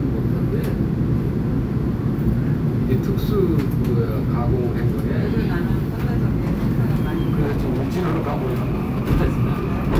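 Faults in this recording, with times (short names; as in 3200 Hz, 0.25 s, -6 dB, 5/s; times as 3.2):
7.41–9.1 clipped -17.5 dBFS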